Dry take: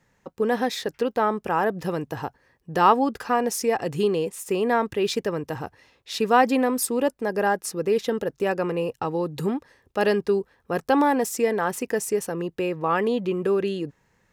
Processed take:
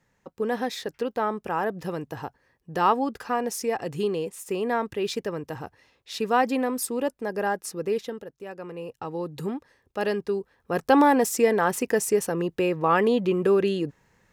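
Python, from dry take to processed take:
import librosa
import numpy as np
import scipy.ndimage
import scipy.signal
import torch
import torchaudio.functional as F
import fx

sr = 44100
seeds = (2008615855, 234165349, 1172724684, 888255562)

y = fx.gain(x, sr, db=fx.line((7.93, -4.0), (8.36, -16.0), (9.21, -5.0), (10.4, -5.0), (10.93, 2.0)))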